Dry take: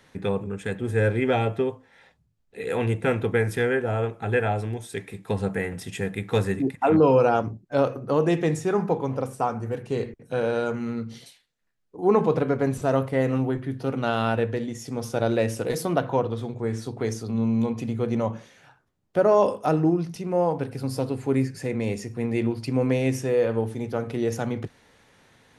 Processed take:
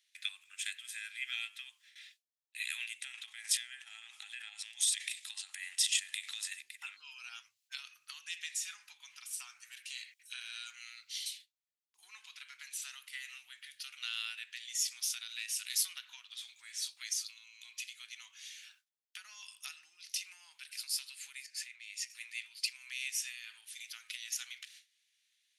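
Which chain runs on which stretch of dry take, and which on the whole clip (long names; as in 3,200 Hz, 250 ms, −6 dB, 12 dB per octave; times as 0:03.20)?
0:03.01–0:06.52: loudspeaker in its box 210–10,000 Hz, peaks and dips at 250 Hz +8 dB, 540 Hz +3 dB, 810 Hz +8 dB, 1,500 Hz −7 dB, 2,300 Hz −6 dB + downward compressor 4 to 1, threshold −30 dBFS + transient designer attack +1 dB, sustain +10 dB
0:21.46–0:22.10: high-shelf EQ 5,900 Hz −8 dB + downward compressor 12 to 1, threshold −34 dBFS
whole clip: noise gate with hold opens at −45 dBFS; downward compressor 5 to 1, threshold −29 dBFS; inverse Chebyshev high-pass filter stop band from 580 Hz, stop band 70 dB; level +9.5 dB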